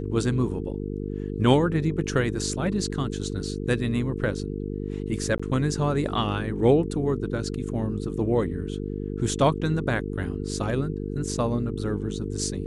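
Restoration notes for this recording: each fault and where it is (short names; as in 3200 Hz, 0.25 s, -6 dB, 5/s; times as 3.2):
buzz 50 Hz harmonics 9 -31 dBFS
5.38–5.39 gap 15 ms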